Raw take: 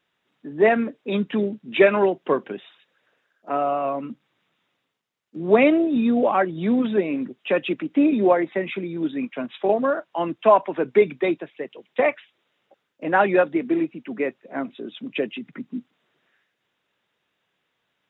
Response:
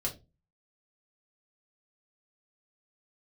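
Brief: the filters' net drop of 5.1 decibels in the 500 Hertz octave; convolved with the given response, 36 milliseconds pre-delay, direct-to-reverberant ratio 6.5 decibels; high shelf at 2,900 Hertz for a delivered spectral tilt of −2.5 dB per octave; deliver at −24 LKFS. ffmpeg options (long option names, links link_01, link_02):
-filter_complex "[0:a]equalizer=frequency=500:width_type=o:gain=-6.5,highshelf=frequency=2900:gain=-6,asplit=2[link_01][link_02];[1:a]atrim=start_sample=2205,adelay=36[link_03];[link_02][link_03]afir=irnorm=-1:irlink=0,volume=-9.5dB[link_04];[link_01][link_04]amix=inputs=2:normalize=0,volume=0.5dB"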